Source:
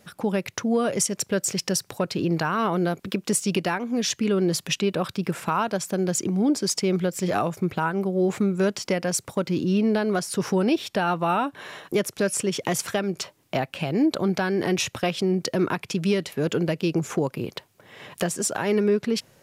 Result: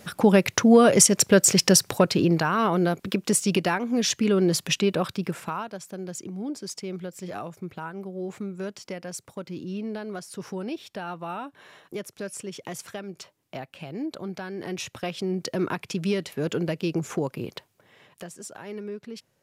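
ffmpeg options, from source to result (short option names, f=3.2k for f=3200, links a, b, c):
-af "volume=15.5dB,afade=t=out:st=1.9:d=0.5:silence=0.473151,afade=t=out:st=4.92:d=0.77:silence=0.251189,afade=t=in:st=14.54:d=1.17:silence=0.398107,afade=t=out:st=17.52:d=0.57:silence=0.266073"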